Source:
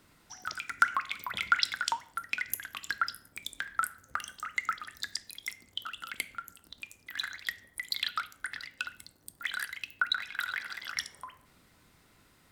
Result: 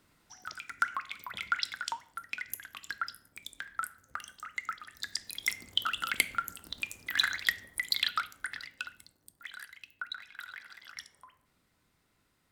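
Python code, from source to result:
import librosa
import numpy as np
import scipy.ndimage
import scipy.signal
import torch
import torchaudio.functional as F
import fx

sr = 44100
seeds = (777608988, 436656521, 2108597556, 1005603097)

y = fx.gain(x, sr, db=fx.line((4.86, -5.0), (5.52, 8.0), (7.29, 8.0), (8.67, -1.5), (9.5, -10.5)))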